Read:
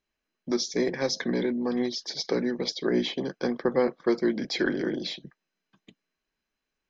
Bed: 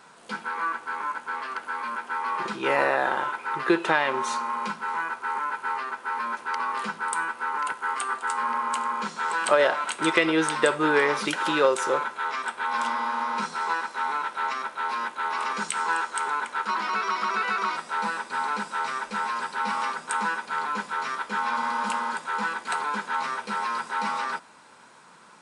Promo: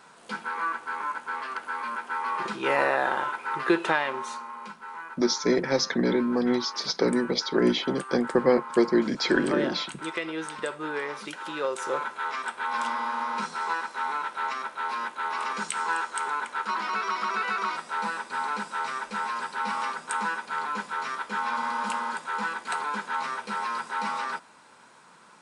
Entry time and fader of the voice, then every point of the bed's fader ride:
4.70 s, +3.0 dB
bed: 3.86 s -1 dB
4.51 s -10.5 dB
11.52 s -10.5 dB
12.08 s -2 dB

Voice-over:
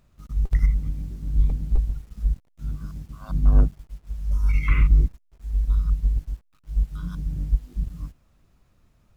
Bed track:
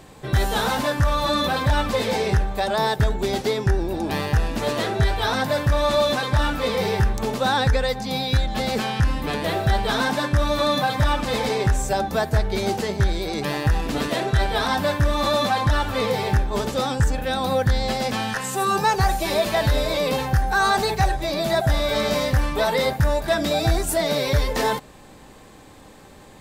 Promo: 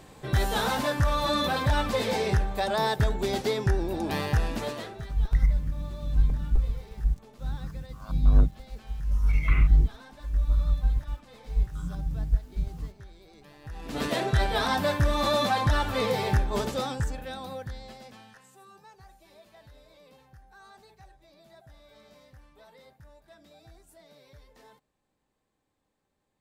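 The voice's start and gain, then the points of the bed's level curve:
4.80 s, -2.5 dB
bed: 4.53 s -4.5 dB
5.27 s -27.5 dB
13.58 s -27.5 dB
14.04 s -4 dB
16.6 s -4 dB
18.82 s -33.5 dB

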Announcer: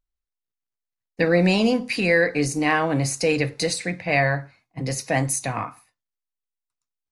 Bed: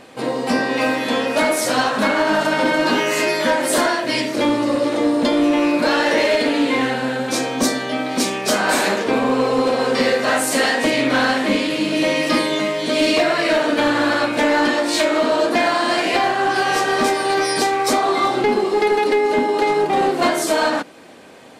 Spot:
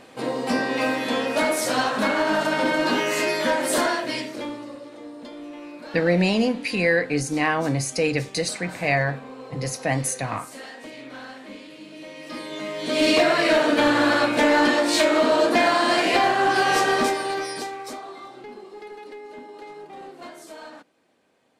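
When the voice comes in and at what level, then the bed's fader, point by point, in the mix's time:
4.75 s, -1.5 dB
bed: 3.97 s -4.5 dB
4.86 s -22 dB
12.13 s -22 dB
13.09 s -1.5 dB
16.89 s -1.5 dB
18.25 s -23 dB

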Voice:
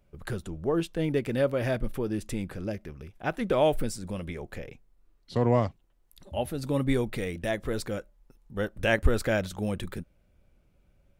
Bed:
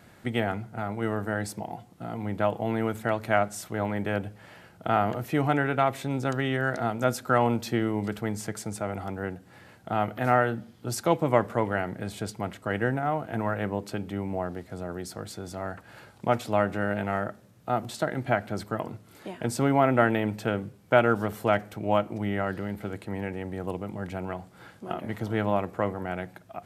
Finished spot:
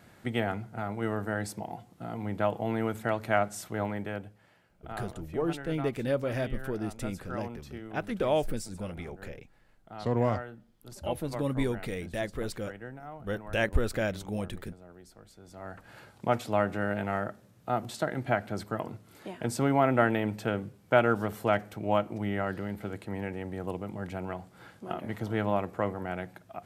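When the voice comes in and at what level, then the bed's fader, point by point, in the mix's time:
4.70 s, -3.5 dB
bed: 3.82 s -2.5 dB
4.65 s -16.5 dB
15.35 s -16.5 dB
15.86 s -2.5 dB

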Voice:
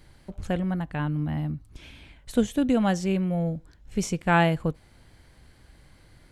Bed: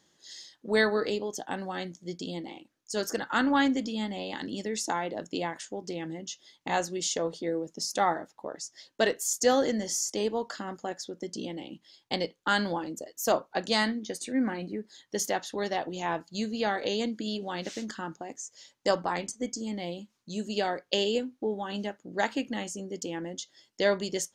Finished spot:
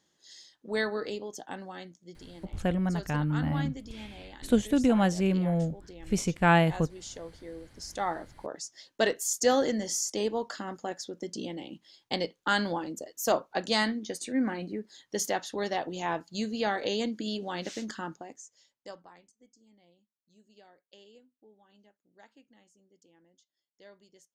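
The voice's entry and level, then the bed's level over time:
2.15 s, -1.0 dB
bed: 1.56 s -5.5 dB
2.21 s -12.5 dB
7.67 s -12.5 dB
8.32 s -0.5 dB
18.07 s -0.5 dB
19.33 s -28.5 dB

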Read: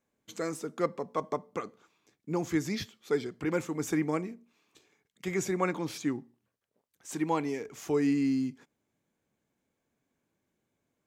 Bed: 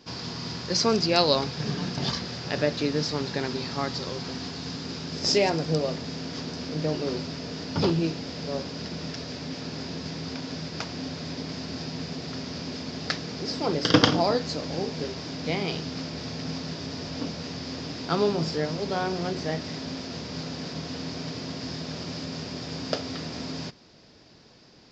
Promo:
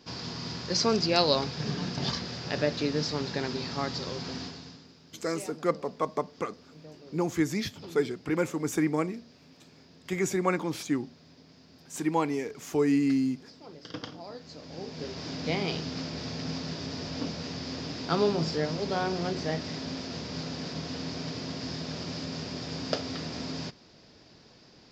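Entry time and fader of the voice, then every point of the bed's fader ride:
4.85 s, +2.5 dB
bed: 4.41 s -2.5 dB
4.94 s -21 dB
14.2 s -21 dB
15.27 s -1.5 dB

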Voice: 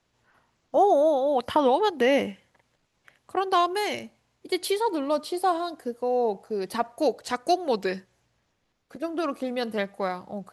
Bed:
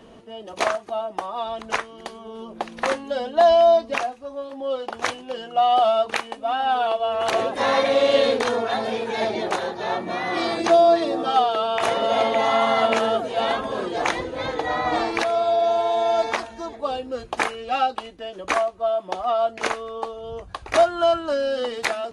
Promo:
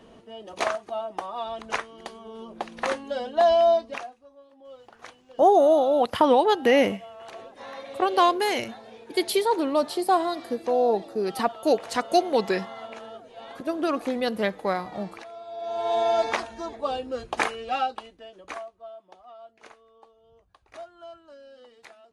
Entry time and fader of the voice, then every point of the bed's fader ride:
4.65 s, +2.5 dB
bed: 3.72 s -4 dB
4.37 s -20 dB
15.48 s -20 dB
15.93 s -2 dB
17.62 s -2 dB
19.26 s -25 dB

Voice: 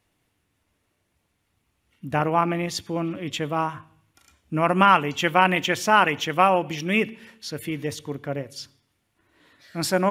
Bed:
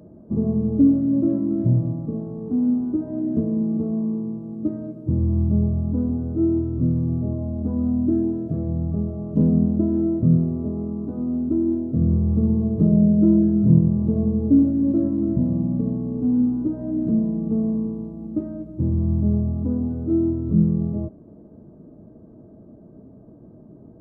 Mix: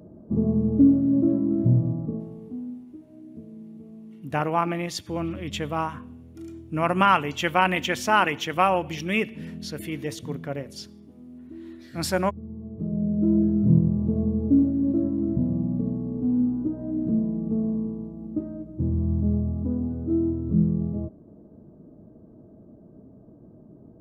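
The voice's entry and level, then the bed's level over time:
2.20 s, -2.5 dB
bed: 2.04 s -1 dB
2.87 s -20 dB
12.43 s -20 dB
13.4 s -3.5 dB

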